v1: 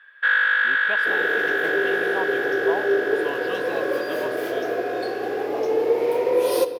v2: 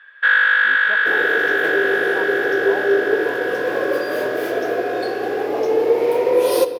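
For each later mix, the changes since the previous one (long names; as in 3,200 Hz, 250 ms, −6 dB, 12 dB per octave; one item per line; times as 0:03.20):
speech: add high-frequency loss of the air 430 metres
first sound +4.5 dB
second sound +4.0 dB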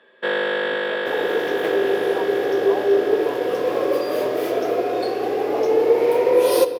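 first sound: remove high-pass with resonance 1,500 Hz, resonance Q 6.5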